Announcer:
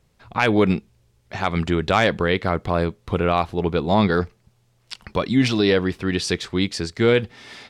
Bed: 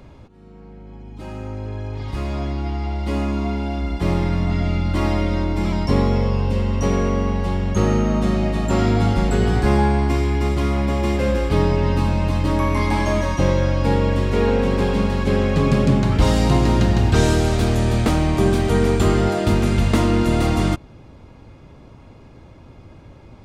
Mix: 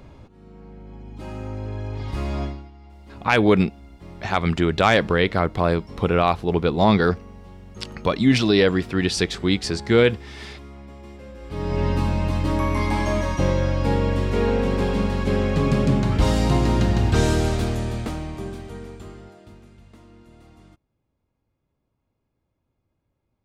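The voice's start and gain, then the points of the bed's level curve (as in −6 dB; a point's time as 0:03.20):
2.90 s, +1.0 dB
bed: 0:02.44 −1.5 dB
0:02.71 −21.5 dB
0:11.35 −21.5 dB
0:11.80 −3 dB
0:17.47 −3 dB
0:19.77 −32 dB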